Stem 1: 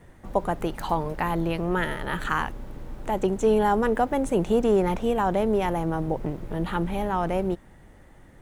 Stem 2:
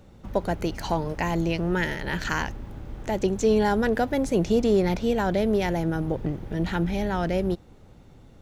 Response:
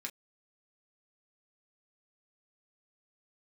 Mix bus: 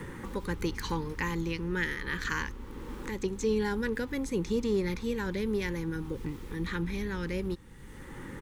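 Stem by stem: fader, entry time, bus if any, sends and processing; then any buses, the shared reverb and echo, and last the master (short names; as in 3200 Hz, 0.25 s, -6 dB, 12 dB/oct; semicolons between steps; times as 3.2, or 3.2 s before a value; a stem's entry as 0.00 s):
-8.5 dB, 0.00 s, no send, limiter -20.5 dBFS, peak gain reduction 10.5 dB; three-band squash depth 100%
-5.5 dB, 0.4 ms, no send, AGC gain up to 8 dB; auto duck -7 dB, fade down 1.50 s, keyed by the first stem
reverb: off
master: Butterworth band-stop 670 Hz, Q 2.1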